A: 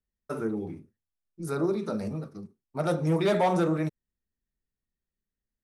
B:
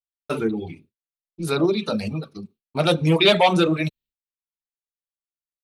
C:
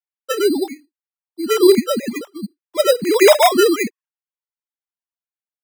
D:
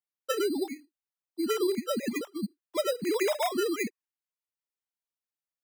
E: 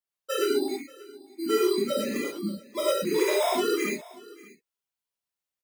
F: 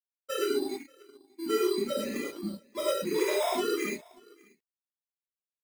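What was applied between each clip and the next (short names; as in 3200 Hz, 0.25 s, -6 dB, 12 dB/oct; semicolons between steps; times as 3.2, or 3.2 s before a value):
reverb removal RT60 0.89 s; expander -55 dBFS; band shelf 3200 Hz +13.5 dB 1.1 oct; gain +8 dB
sine-wave speech; sample-and-hold 10×; gain +5.5 dB
compressor 6:1, threshold -22 dBFS, peak gain reduction 15 dB; gain -4 dB
echo 0.585 s -21 dB; non-linear reverb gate 0.15 s flat, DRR -6.5 dB; gain -4 dB
G.711 law mismatch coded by A; gain -3 dB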